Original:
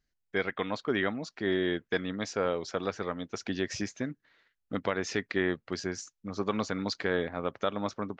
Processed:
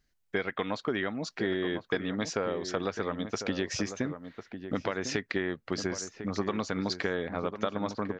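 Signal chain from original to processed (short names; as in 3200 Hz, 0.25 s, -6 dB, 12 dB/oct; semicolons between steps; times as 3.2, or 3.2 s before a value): compressor, threshold -33 dBFS, peak gain reduction 10 dB; outdoor echo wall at 180 m, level -9 dB; gain +6 dB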